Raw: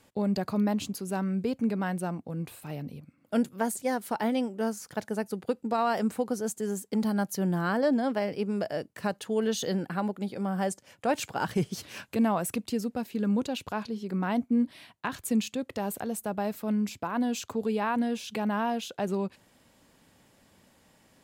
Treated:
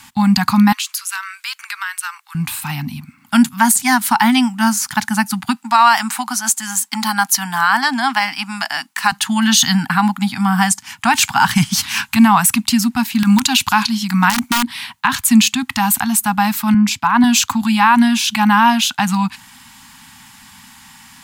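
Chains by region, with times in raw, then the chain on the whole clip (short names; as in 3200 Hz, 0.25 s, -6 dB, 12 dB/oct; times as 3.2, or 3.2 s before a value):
0.72–2.35 steep high-pass 1200 Hz + compressor, threshold -41 dBFS
5.56–9.12 HPF 440 Hz + bell 13000 Hz -3.5 dB 0.23 oct
13.19–14.64 high shelf 2900 Hz +7.5 dB + wrapped overs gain 19.5 dB
16.74–17.24 high shelf 11000 Hz -11 dB + three-band expander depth 70%
whole clip: elliptic band-stop 250–850 Hz, stop band 50 dB; low shelf 380 Hz -10 dB; maximiser +24.5 dB; gain -1 dB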